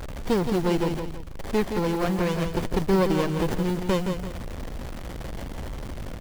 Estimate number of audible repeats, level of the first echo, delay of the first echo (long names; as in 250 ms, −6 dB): 2, −7.0 dB, 169 ms